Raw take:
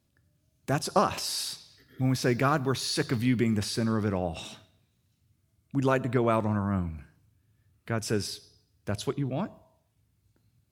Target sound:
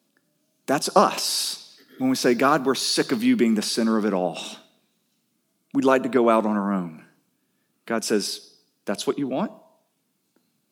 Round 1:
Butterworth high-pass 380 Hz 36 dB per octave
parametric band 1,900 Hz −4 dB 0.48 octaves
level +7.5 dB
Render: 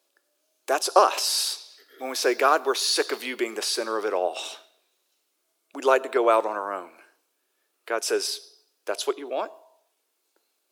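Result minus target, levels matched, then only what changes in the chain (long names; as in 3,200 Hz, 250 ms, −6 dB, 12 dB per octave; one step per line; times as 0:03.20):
250 Hz band −11.0 dB
change: Butterworth high-pass 190 Hz 36 dB per octave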